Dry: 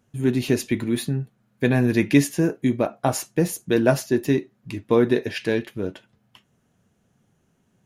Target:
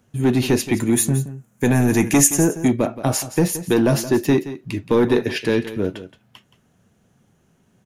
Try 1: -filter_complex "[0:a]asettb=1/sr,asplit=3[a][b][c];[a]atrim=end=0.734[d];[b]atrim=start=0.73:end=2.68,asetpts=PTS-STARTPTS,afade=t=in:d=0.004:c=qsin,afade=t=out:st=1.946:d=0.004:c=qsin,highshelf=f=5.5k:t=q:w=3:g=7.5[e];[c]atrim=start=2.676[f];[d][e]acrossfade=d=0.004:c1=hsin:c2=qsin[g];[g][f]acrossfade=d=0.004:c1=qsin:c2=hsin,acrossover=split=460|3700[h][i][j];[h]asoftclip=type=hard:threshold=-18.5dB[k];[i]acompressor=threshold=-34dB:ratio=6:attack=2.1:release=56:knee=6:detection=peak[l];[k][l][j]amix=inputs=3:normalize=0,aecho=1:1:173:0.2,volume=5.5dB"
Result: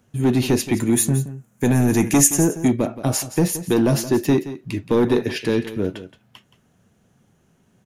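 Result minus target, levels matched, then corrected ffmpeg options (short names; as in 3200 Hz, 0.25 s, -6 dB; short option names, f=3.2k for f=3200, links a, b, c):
compressor: peak gain reduction +6 dB
-filter_complex "[0:a]asettb=1/sr,asplit=3[a][b][c];[a]atrim=end=0.734[d];[b]atrim=start=0.73:end=2.68,asetpts=PTS-STARTPTS,afade=t=in:d=0.004:c=qsin,afade=t=out:st=1.946:d=0.004:c=qsin,highshelf=f=5.5k:t=q:w=3:g=7.5[e];[c]atrim=start=2.676[f];[d][e]acrossfade=d=0.004:c1=hsin:c2=qsin[g];[g][f]acrossfade=d=0.004:c1=qsin:c2=hsin,acrossover=split=460|3700[h][i][j];[h]asoftclip=type=hard:threshold=-18.5dB[k];[i]acompressor=threshold=-27dB:ratio=6:attack=2.1:release=56:knee=6:detection=peak[l];[k][l][j]amix=inputs=3:normalize=0,aecho=1:1:173:0.2,volume=5.5dB"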